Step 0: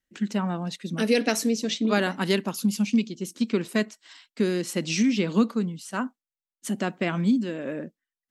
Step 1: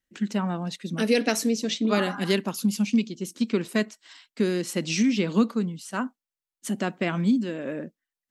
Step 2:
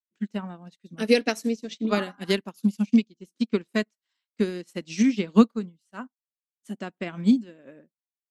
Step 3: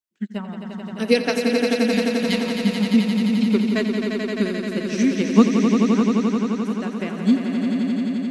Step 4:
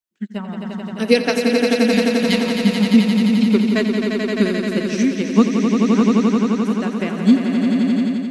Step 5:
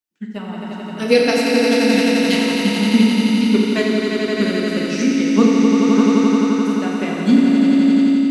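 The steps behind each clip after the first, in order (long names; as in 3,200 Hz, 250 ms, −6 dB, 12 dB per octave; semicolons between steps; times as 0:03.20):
healed spectral selection 0:01.98–0:02.31, 750–1,700 Hz both
expander for the loud parts 2.5 to 1, over −41 dBFS; level +6.5 dB
healed spectral selection 0:01.52–0:02.45, 240–1,800 Hz both; echo that builds up and dies away 87 ms, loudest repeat 5, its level −7 dB; level +2 dB
automatic gain control gain up to 6 dB
feedback delay network reverb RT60 2.5 s, low-frequency decay 0.95×, high-frequency decay 0.9×, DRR −2 dB; level −1.5 dB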